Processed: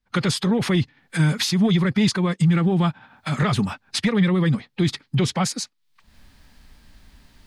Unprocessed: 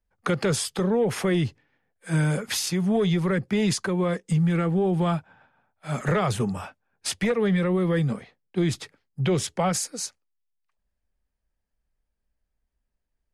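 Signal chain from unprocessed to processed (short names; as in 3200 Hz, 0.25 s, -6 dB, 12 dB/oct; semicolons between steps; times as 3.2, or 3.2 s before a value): recorder AGC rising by 31 dB/s; graphic EQ 125/250/500/1000/2000/4000 Hz +5/+8/-5/+5/+4/+11 dB; time stretch by phase-locked vocoder 0.56×; gain -1 dB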